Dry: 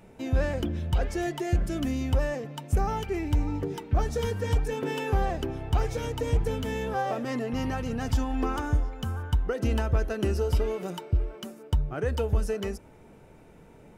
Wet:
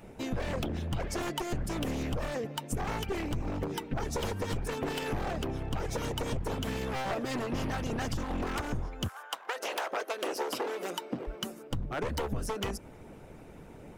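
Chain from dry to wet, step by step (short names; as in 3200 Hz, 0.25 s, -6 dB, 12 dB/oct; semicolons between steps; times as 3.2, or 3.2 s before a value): one-sided fold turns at -27.5 dBFS; 9.07–11.27 HPF 750 Hz -> 200 Hz 24 dB/oct; harmonic-percussive split harmonic -10 dB; limiter -26 dBFS, peak gain reduction 8.5 dB; compressor 3:1, threshold -37 dBFS, peak gain reduction 6.5 dB; gain +7 dB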